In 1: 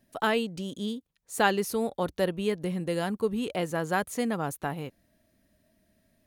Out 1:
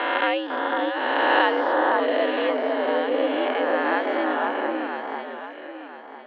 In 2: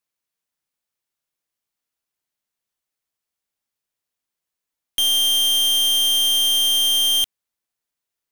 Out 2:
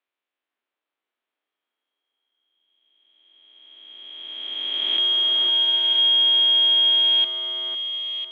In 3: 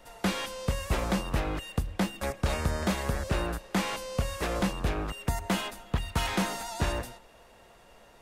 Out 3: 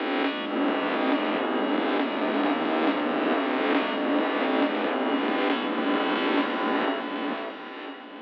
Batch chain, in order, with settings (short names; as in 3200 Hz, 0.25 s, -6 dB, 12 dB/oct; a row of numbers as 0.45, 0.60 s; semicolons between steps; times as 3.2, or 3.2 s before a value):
spectral swells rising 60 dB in 2.79 s; echo with dull and thin repeats by turns 0.501 s, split 1600 Hz, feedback 55%, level -2 dB; mistuned SSB +87 Hz 170–3400 Hz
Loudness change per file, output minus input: +6.5, -2.0, +6.0 LU